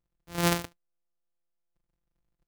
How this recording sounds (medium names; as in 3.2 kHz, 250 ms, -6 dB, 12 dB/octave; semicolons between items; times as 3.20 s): a buzz of ramps at a fixed pitch in blocks of 256 samples